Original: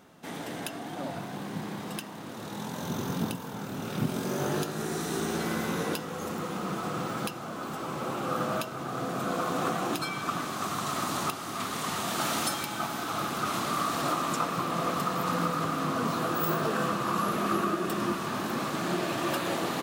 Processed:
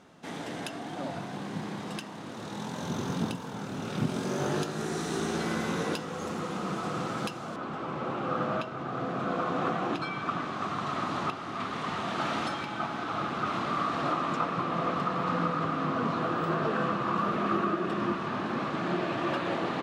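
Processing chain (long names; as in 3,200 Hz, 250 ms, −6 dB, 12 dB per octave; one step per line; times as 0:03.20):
low-pass filter 7,700 Hz 12 dB per octave, from 0:07.56 3,000 Hz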